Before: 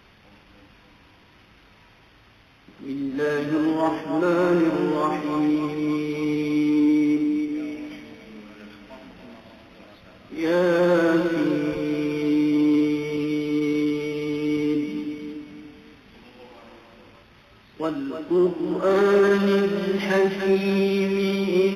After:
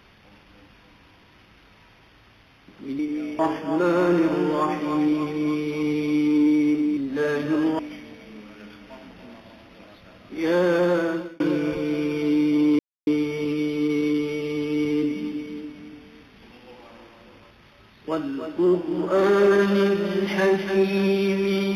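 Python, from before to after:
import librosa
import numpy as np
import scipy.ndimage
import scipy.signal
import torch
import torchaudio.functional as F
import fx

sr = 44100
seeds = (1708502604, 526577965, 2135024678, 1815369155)

y = fx.edit(x, sr, fx.swap(start_s=2.99, length_s=0.82, other_s=7.39, other_length_s=0.4),
    fx.fade_out_span(start_s=10.53, length_s=0.87, curve='qsin'),
    fx.insert_silence(at_s=12.79, length_s=0.28), tone=tone)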